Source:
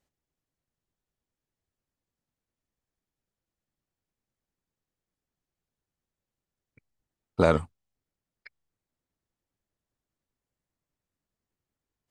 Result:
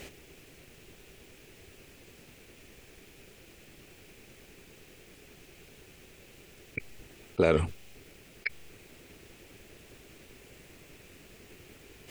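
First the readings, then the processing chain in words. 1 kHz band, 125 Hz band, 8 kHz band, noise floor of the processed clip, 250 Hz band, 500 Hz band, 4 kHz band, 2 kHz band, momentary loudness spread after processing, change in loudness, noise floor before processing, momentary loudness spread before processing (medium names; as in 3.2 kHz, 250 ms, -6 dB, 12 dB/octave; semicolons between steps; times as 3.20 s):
-6.0 dB, -2.0 dB, no reading, -56 dBFS, -2.0 dB, -1.0 dB, +2.5 dB, +3.0 dB, 16 LU, -5.5 dB, under -85 dBFS, 9 LU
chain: fifteen-band graphic EQ 400 Hz +9 dB, 1 kHz -5 dB, 2.5 kHz +11 dB; level flattener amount 70%; trim -7 dB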